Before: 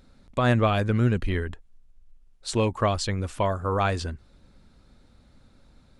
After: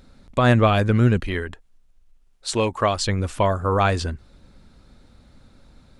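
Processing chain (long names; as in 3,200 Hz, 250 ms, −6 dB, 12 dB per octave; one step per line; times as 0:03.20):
0:01.20–0:03.00: low-shelf EQ 270 Hz −8 dB
level +5 dB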